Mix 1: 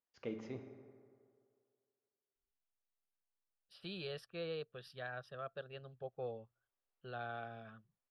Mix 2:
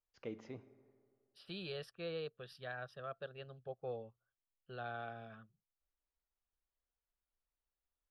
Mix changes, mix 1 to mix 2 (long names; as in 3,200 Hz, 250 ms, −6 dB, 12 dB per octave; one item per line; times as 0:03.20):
first voice: send −10.0 dB
second voice: entry −2.35 s